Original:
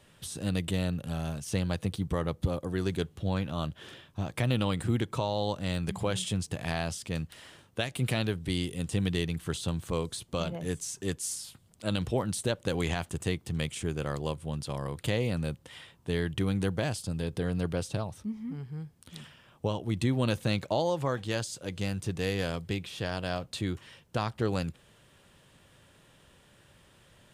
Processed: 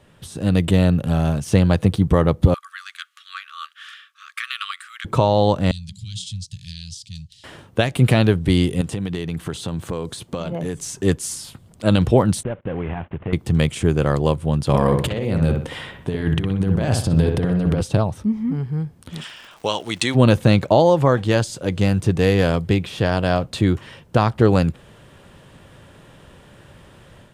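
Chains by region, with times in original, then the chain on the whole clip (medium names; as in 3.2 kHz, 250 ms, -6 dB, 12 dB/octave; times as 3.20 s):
2.54–5.05 s: treble shelf 11 kHz -5.5 dB + tremolo 1.5 Hz, depth 41% + brick-wall FIR high-pass 1.1 kHz
5.71–7.44 s: Chebyshev band-stop 110–4000 Hz, order 3 + three-band isolator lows -16 dB, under 160 Hz, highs -19 dB, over 7.9 kHz
8.81–10.79 s: high-pass 130 Hz 6 dB/octave + compression 5:1, threshold -36 dBFS
12.43–13.33 s: CVSD coder 16 kbps + gate -49 dBFS, range -20 dB + compression 2:1, threshold -44 dBFS
14.67–17.81 s: compressor with a negative ratio -33 dBFS, ratio -0.5 + feedback echo behind a low-pass 62 ms, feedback 36%, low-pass 2.8 kHz, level -4 dB
19.20–20.14 s: frequency weighting ITU-R 468 + crackle 220 per s -45 dBFS
whole clip: treble shelf 2.2 kHz -9.5 dB; level rider gain up to 7 dB; trim +8 dB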